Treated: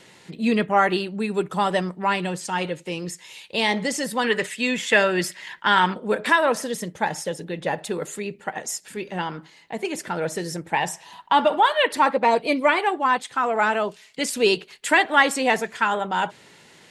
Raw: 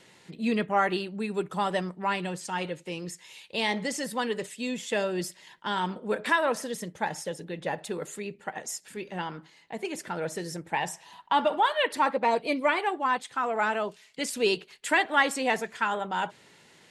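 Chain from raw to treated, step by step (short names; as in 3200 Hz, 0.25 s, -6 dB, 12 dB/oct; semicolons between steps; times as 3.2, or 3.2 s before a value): 4.24–5.94 bell 1800 Hz +10.5 dB 1.6 oct; gain +6 dB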